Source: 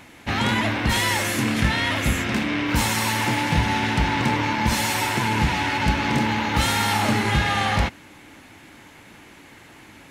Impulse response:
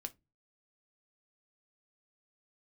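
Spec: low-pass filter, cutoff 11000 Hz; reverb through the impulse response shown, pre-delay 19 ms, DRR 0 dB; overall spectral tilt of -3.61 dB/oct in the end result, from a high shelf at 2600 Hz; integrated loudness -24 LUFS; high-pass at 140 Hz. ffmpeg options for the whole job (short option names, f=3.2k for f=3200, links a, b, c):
-filter_complex "[0:a]highpass=140,lowpass=11k,highshelf=f=2.6k:g=-8,asplit=2[a][b];[1:a]atrim=start_sample=2205,adelay=19[c];[b][c]afir=irnorm=-1:irlink=0,volume=3dB[d];[a][d]amix=inputs=2:normalize=0,volume=-2.5dB"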